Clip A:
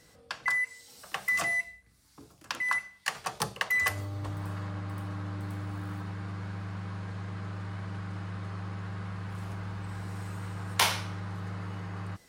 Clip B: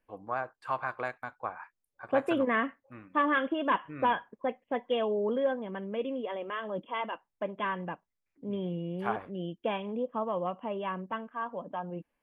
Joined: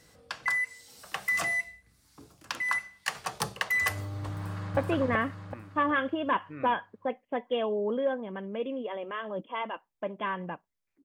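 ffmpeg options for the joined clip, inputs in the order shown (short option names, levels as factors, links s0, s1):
-filter_complex "[0:a]apad=whole_dur=11.04,atrim=end=11.04,atrim=end=4.772[s0];[1:a]atrim=start=2.158:end=8.43[s1];[s0][s1]acrossfade=d=0.004:c1=hsin:c2=hsin,asplit=2[s2][s3];[s3]afade=t=in:st=4.36:d=0.01,afade=t=out:st=4.77:d=0.01,aecho=0:1:380|760|1140|1520|1900|2280:1|0.45|0.2025|0.091125|0.0410062|0.0184528[s4];[s2][s4]amix=inputs=2:normalize=0"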